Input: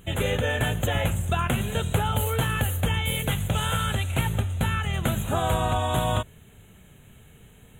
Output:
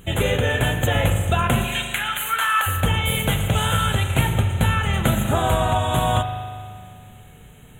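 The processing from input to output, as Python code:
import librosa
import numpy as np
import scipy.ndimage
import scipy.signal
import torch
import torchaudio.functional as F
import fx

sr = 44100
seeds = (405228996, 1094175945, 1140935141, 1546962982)

y = fx.rider(x, sr, range_db=10, speed_s=0.5)
y = fx.highpass_res(y, sr, hz=fx.line((1.64, 2500.0), (2.66, 1100.0)), q=2.9, at=(1.64, 2.66), fade=0.02)
y = fx.rev_spring(y, sr, rt60_s=2.1, pass_ms=(39,), chirp_ms=25, drr_db=6.0)
y = y * 10.0 ** (4.5 / 20.0)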